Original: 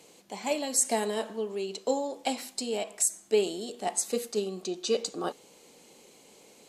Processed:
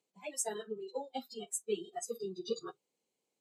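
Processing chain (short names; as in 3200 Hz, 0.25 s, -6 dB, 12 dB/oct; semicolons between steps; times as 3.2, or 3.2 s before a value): plain phase-vocoder stretch 0.51×; spectral noise reduction 23 dB; gain -4.5 dB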